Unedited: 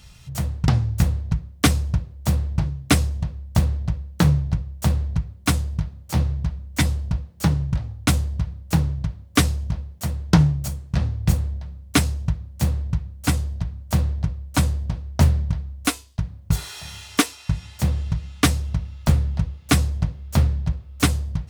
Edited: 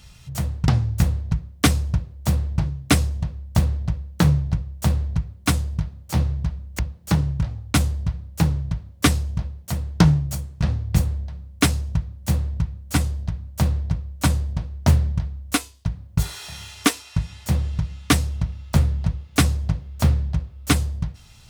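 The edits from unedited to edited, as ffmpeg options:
-filter_complex "[0:a]asplit=2[a][b];[a]atrim=end=6.792[c];[b]atrim=start=7.118[d];[c][d]acrossfade=d=0.004:c1=hsin:c2=hsin"

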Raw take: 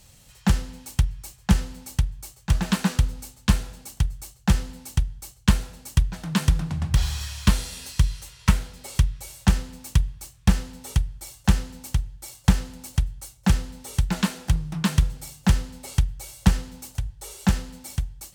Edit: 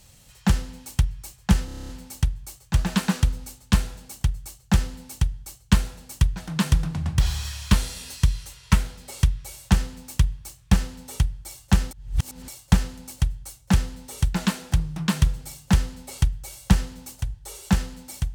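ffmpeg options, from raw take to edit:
-filter_complex "[0:a]asplit=11[a][b][c][d][e][f][g][h][i][j][k];[a]atrim=end=1.682[l];[b]atrim=start=1.648:end=1.682[m];[c]atrim=start=1.648:end=1.682[n];[d]atrim=start=1.648:end=1.682[o];[e]atrim=start=1.648:end=1.682[p];[f]atrim=start=1.648:end=1.682[q];[g]atrim=start=1.648:end=1.682[r];[h]atrim=start=1.648:end=1.682[s];[i]atrim=start=1.648:end=11.672[t];[j]atrim=start=11.668:end=12.242,asetpts=PTS-STARTPTS,areverse[u];[k]atrim=start=12.238[v];[l][m]acrossfade=d=0.004:c1=hsin:c2=hsin[w];[w][n]acrossfade=d=0.004:c1=hsin:c2=hsin[x];[x][o]acrossfade=d=0.004:c1=hsin:c2=hsin[y];[y][p]acrossfade=d=0.004:c1=hsin:c2=hsin[z];[z][q]acrossfade=d=0.004:c1=hsin:c2=hsin[aa];[aa][r]acrossfade=d=0.004:c1=hsin:c2=hsin[ab];[ab][s]acrossfade=d=0.004:c1=hsin:c2=hsin[ac];[ac][t]acrossfade=d=0.004:c1=hsin:c2=hsin[ad];[ad][u]acrossfade=d=0.004:c1=hsin:c2=hsin[ae];[ae][v]acrossfade=d=0.004:c1=hsin:c2=hsin"

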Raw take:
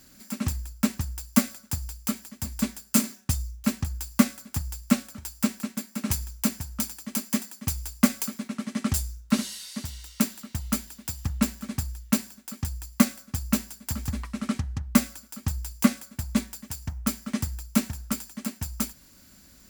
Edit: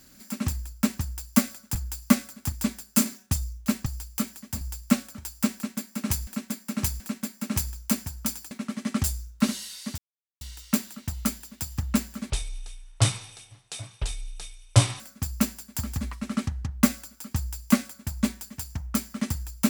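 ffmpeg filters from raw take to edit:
-filter_complex "[0:a]asplit=11[a][b][c][d][e][f][g][h][i][j][k];[a]atrim=end=1.752[l];[b]atrim=start=3.838:end=4.612[m];[c]atrim=start=2.498:end=3.842[n];[d]atrim=start=1.748:end=2.502[o];[e]atrim=start=4.608:end=6.272[p];[f]atrim=start=5.538:end=6.272[q];[g]atrim=start=5.538:end=7.052[r];[h]atrim=start=8.408:end=9.88,asetpts=PTS-STARTPTS,afade=t=out:st=1.468:d=0.004:c=hsin,apad=pad_dur=0.43[s];[i]atrim=start=9.88:end=11.774,asetpts=PTS-STARTPTS,afade=t=in:d=0.004:c=hsin[t];[j]atrim=start=11.77:end=13.12,asetpts=PTS-STARTPTS,asetrate=22050,aresample=44100[u];[k]atrim=start=13.116[v];[l][m]acrossfade=d=0.004:c1=hsin:c2=hsin[w];[w][n]acrossfade=d=0.004:c1=hsin:c2=hsin[x];[x][o]acrossfade=d=0.004:c1=hsin:c2=hsin[y];[y][p]acrossfade=d=0.004:c1=hsin:c2=hsin[z];[z][q]acrossfade=d=0.004:c1=hsin:c2=hsin[aa];[aa][r]acrossfade=d=0.004:c1=hsin:c2=hsin[ab];[s][t]concat=n=2:v=0:a=1[ac];[ab][ac]acrossfade=d=0.004:c1=hsin:c2=hsin[ad];[ad][u]acrossfade=d=0.004:c1=hsin:c2=hsin[ae];[ae][v]acrossfade=d=0.004:c1=hsin:c2=hsin"

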